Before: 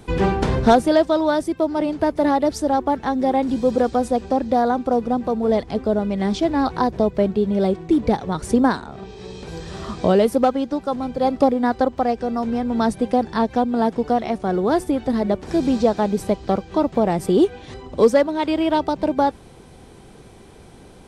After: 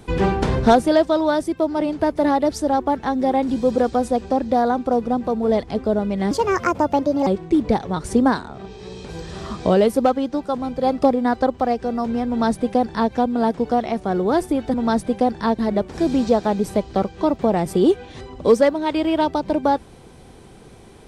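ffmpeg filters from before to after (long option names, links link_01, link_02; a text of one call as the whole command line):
ffmpeg -i in.wav -filter_complex "[0:a]asplit=5[link_01][link_02][link_03][link_04][link_05];[link_01]atrim=end=6.314[link_06];[link_02]atrim=start=6.31:end=7.65,asetpts=PTS-STARTPTS,asetrate=61740,aresample=44100[link_07];[link_03]atrim=start=7.646:end=15.122[link_08];[link_04]atrim=start=12.658:end=13.512[link_09];[link_05]atrim=start=15.118[link_10];[link_06][link_07]acrossfade=duration=0.004:curve1=hsin:curve2=hsin[link_11];[link_11][link_08]acrossfade=duration=0.004:curve1=hsin:curve2=hsin[link_12];[link_12][link_09]acrossfade=duration=0.004:curve1=hsin:curve2=hsin[link_13];[link_13][link_10]acrossfade=duration=0.004:curve1=hsin:curve2=hsin" out.wav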